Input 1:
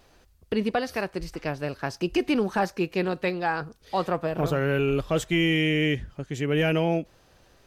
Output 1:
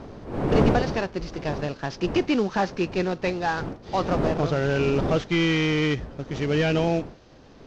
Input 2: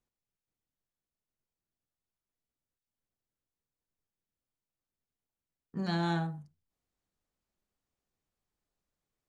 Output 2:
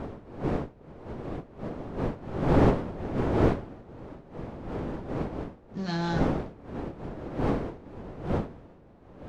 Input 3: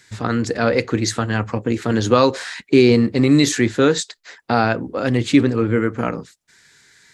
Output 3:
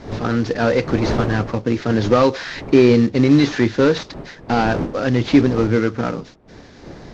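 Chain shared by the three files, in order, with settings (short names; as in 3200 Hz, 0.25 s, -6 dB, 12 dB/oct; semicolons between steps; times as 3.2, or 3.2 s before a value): CVSD 32 kbps; wind noise 420 Hz -32 dBFS; gain +1.5 dB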